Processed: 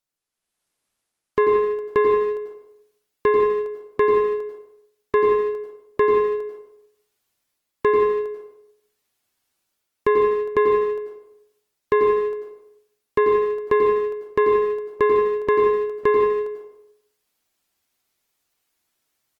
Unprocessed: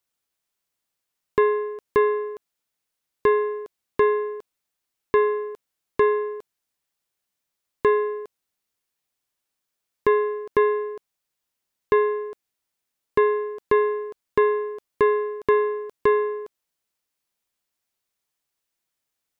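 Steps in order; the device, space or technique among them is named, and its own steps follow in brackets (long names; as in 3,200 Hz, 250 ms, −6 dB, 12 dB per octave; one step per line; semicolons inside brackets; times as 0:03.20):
speakerphone in a meeting room (convolution reverb RT60 0.65 s, pre-delay 87 ms, DRR 1.5 dB; far-end echo of a speakerphone 150 ms, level −14 dB; automatic gain control gain up to 12 dB; level −6.5 dB; Opus 24 kbit/s 48,000 Hz)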